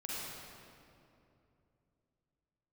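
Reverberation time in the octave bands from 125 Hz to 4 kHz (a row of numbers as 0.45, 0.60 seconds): 3.8, 3.4, 3.0, 2.5, 2.1, 1.7 seconds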